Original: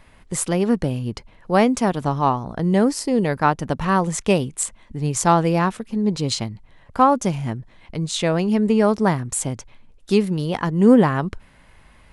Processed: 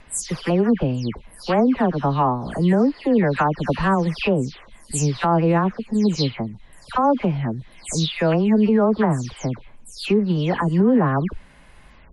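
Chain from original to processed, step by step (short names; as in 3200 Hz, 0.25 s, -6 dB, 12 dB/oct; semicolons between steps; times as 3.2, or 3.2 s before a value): spectral delay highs early, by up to 0.227 s; treble ducked by the level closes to 1700 Hz, closed at -13 dBFS; limiter -12 dBFS, peak gain reduction 9 dB; gain +2.5 dB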